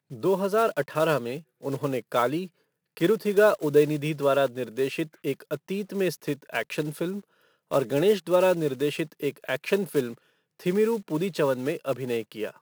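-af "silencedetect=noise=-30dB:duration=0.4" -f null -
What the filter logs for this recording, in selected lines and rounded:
silence_start: 2.45
silence_end: 2.97 | silence_duration: 0.52
silence_start: 7.19
silence_end: 7.72 | silence_duration: 0.53
silence_start: 10.12
silence_end: 10.66 | silence_duration: 0.54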